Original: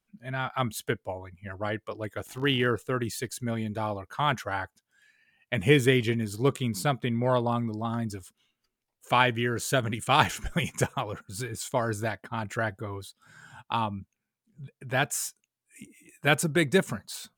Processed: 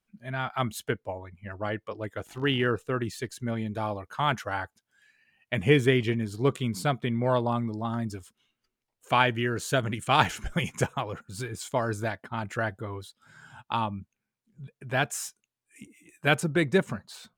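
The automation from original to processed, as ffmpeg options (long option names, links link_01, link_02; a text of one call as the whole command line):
ffmpeg -i in.wav -af "asetnsamples=nb_out_samples=441:pad=0,asendcmd='0.83 lowpass f 4100;3.75 lowpass f 10000;5.6 lowpass f 4000;6.52 lowpass f 6800;16.4 lowpass f 2900',lowpass=frequency=9900:poles=1" out.wav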